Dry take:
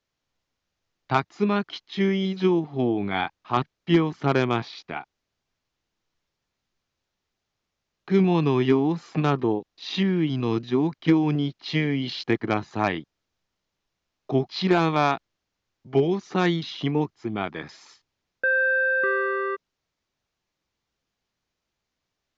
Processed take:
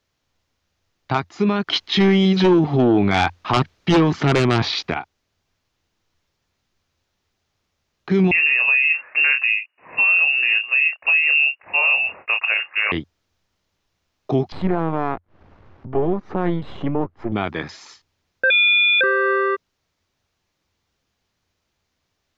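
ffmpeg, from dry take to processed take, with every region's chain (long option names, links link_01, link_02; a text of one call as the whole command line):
ffmpeg -i in.wav -filter_complex "[0:a]asettb=1/sr,asplit=3[link_01][link_02][link_03];[link_01]atrim=end=1.674[link_04];[link_02]atrim=start=1.67:end=4.94,asetpts=PTS-STARTPTS,afade=type=in:duration=0.004:curve=qsin,afade=type=out:start_time=3.266:duration=0.004:curve=qsin,lowpass=frequency=4000:poles=1,highshelf=frequency=2500:gain=4,aeval=exprs='0.335*sin(PI/2*2*val(0)/0.335)':channel_layout=same[link_05];[link_03]atrim=start=4.936[link_06];[link_04][link_05]acrossfade=duration=0.004:curve1=hsin:curve2=qsin[link_07];[link_07][link_06]acrossfade=duration=0.004:curve1=qsin:curve2=hsin,asettb=1/sr,asplit=3[link_08][link_09][link_10];[link_08]atrim=end=8.314[link_11];[link_09]atrim=start=8.31:end=12.92,asetpts=PTS-STARTPTS,afade=type=in:duration=0.004:curve=qsin,afade=type=out:start_time=4.606:duration=0.004:curve=qsin,lowpass=frequency=2500:width_type=q:width=0.5098,lowpass=frequency=2500:width_type=q:width=0.6013,lowpass=frequency=2500:width_type=q:width=0.9,lowpass=frequency=2500:width_type=q:width=2.563,afreqshift=-2900,highpass=frequency=610:poles=1,asplit=2[link_12][link_13];[link_13]adelay=28,volume=-8dB[link_14];[link_12][link_14]amix=inputs=2:normalize=0,atrim=end_sample=203301[link_15];[link_10]atrim=start=12.916[link_16];[link_11][link_15]acrossfade=duration=0.004:curve1=hsin:curve2=qsin[link_17];[link_17][link_16]acrossfade=duration=0.004:curve1=qsin:curve2=hsin,asettb=1/sr,asplit=3[link_18][link_19][link_20];[link_18]atrim=end=14.524[link_21];[link_19]atrim=start=14.52:end=17.32,asetpts=PTS-STARTPTS,afade=type=in:duration=0.004:curve=qsin,afade=type=out:start_time=2.796:duration=0.004:curve=qsin,aeval=exprs='if(lt(val(0),0),0.251*val(0),val(0))':channel_layout=same,lowpass=1200,acompressor=mode=upward:threshold=-32dB:ratio=2.5:attack=3.2:release=140:knee=2.83:detection=peak[link_22];[link_20]atrim=start=17.316[link_23];[link_21][link_22]acrossfade=duration=0.004:curve1=hsin:curve2=qsin[link_24];[link_24][link_23]acrossfade=duration=0.004:curve1=qsin:curve2=hsin,asettb=1/sr,asplit=3[link_25][link_26][link_27];[link_25]atrim=end=18.504[link_28];[link_26]atrim=start=18.5:end=19.01,asetpts=PTS-STARTPTS,afade=type=in:duration=0.004:curve=qsin,afade=type=out:start_time=0.506:duration=0.004:curve=qsin,lowpass=frequency=3400:width_type=q:width=0.5098,lowpass=frequency=3400:width_type=q:width=0.6013,lowpass=frequency=3400:width_type=q:width=0.9,lowpass=frequency=3400:width_type=q:width=2.563,afreqshift=-4000,highpass=frequency=1300:poles=1[link_29];[link_27]atrim=start=19.006[link_30];[link_28][link_29]acrossfade=duration=0.004:curve1=hsin:curve2=qsin[link_31];[link_31][link_30]acrossfade=duration=0.004:curve1=qsin:curve2=hsin,equalizer=frequency=87:width_type=o:width=0.33:gain=8.5,alimiter=level_in=16dB:limit=-1dB:release=50:level=0:latency=1,volume=-8.5dB" out.wav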